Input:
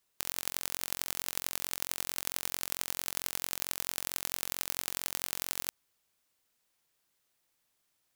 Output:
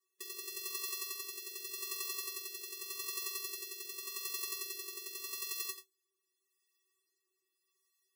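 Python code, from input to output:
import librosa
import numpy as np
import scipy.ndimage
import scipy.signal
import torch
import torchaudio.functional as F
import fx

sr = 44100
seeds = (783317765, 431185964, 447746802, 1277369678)

y = fx.low_shelf(x, sr, hz=93.0, db=-10.5)
y = fx.comb_fb(y, sr, f0_hz=380.0, decay_s=0.15, harmonics='odd', damping=0.0, mix_pct=100)
y = y + 10.0 ** (-10.0 / 20.0) * np.pad(y, (int(88 * sr / 1000.0), 0))[:len(y)]
y = fx.rotary(y, sr, hz=0.85)
y = fx.spec_gate(y, sr, threshold_db=-15, keep='strong')
y = y * librosa.db_to_amplitude(14.0)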